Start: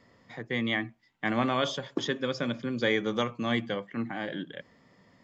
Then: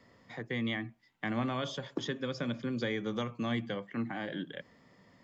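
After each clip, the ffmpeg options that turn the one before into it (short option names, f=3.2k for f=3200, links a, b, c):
-filter_complex "[0:a]acrossover=split=220[a][b];[b]acompressor=threshold=-35dB:ratio=2.5[c];[a][c]amix=inputs=2:normalize=0,volume=-1dB"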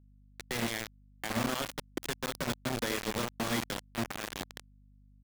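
-af "aecho=1:1:81|162|243|324|405|486|567:0.398|0.223|0.125|0.0699|0.0392|0.0219|0.0123,acrusher=bits=4:mix=0:aa=0.000001,aeval=exprs='val(0)+0.00141*(sin(2*PI*50*n/s)+sin(2*PI*2*50*n/s)/2+sin(2*PI*3*50*n/s)/3+sin(2*PI*4*50*n/s)/4+sin(2*PI*5*50*n/s)/5)':c=same,volume=-1.5dB"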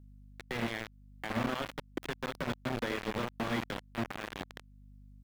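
-filter_complex "[0:a]acrossover=split=3500[a][b];[b]acompressor=threshold=-51dB:ratio=4:attack=1:release=60[c];[a][c]amix=inputs=2:normalize=0,alimiter=level_in=6.5dB:limit=-24dB:level=0:latency=1:release=312,volume=-6.5dB,volume=5.5dB"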